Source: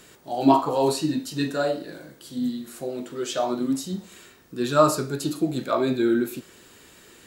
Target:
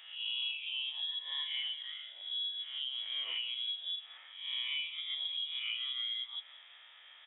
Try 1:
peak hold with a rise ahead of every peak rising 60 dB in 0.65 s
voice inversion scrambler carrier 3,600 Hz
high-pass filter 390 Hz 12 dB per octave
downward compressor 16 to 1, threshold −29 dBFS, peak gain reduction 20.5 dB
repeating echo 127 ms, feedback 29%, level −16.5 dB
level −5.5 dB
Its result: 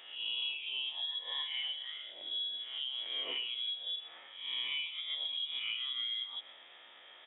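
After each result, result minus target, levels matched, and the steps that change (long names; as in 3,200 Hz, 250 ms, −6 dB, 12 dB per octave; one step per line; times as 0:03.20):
500 Hz band +12.5 dB; echo 49 ms early
change: high-pass filter 1,200 Hz 12 dB per octave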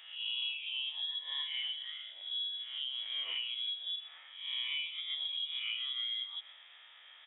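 echo 49 ms early
change: repeating echo 176 ms, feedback 29%, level −16.5 dB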